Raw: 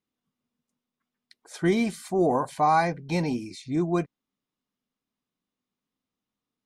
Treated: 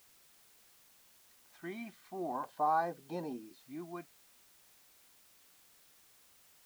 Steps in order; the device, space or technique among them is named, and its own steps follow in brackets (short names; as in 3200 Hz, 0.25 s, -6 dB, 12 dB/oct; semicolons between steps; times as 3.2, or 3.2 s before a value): shortwave radio (BPF 300–2600 Hz; tremolo 0.35 Hz, depth 53%; LFO notch square 0.41 Hz 460–2200 Hz; white noise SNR 22 dB); gain -8.5 dB